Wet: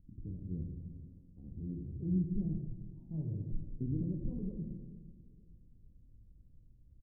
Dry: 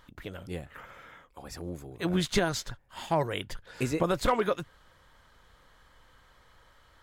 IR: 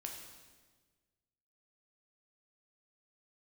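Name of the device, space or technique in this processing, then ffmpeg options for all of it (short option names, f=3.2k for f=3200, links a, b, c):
club heard from the street: -filter_complex "[0:a]alimiter=limit=-22dB:level=0:latency=1:release=143,lowpass=f=240:w=0.5412,lowpass=f=240:w=1.3066[a];[1:a]atrim=start_sample=2205[b];[a][b]afir=irnorm=-1:irlink=0,asettb=1/sr,asplit=3[c][d][e];[c]atrim=end=2.654[f];[d]atrim=start=2.65:end=3.14,asetpts=PTS-STARTPTS,afade=t=in:d=0.004:c=qsin,afade=t=out:st=0.486:d=0.004:c=qsin,lowshelf=f=360:g=-6[g];[e]atrim=start=3.136[h];[f][g]acrossfade=d=0.004:c1=hsin:c2=qsin[i];[i][h]acrossfade=d=0.004:c1=qsin:c2=hsin,asplit=2[j][k];[k]adelay=457,lowpass=f=2k:p=1,volume=-23dB,asplit=2[l][m];[m]adelay=457,lowpass=f=2k:p=1,volume=0.41,asplit=2[n][o];[o]adelay=457,lowpass=f=2k:p=1,volume=0.41[p];[j][l][n][p]amix=inputs=4:normalize=0,volume=6dB"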